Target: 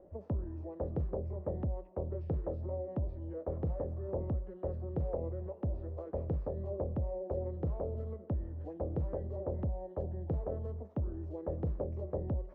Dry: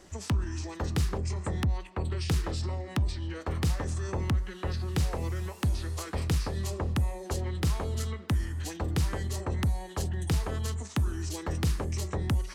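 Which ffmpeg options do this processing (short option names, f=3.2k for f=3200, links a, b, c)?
-af "lowpass=f=570:t=q:w=4.9,volume=-8dB"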